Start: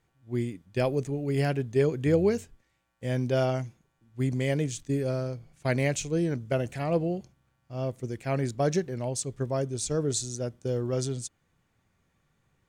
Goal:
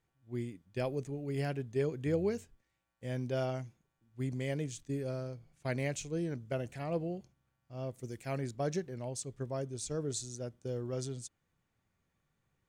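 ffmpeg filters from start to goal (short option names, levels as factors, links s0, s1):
-filter_complex "[0:a]asettb=1/sr,asplit=3[s0][s1][s2];[s0]atrim=end=7.944[s3];[s1]atrim=start=7.94:end=8.38,asetpts=PTS-STARTPTS,afade=t=in:d=0.004:c=qsin,afade=t=out:st=0.436:d=0.004:c=qsin,highshelf=f=5300:g=10[s4];[s2]atrim=start=8.376[s5];[s3][s4]acrossfade=d=0.004:c1=hsin:c2=qsin[s6];[s6][s5]acrossfade=d=0.004:c1=qsin:c2=hsin,volume=0.376"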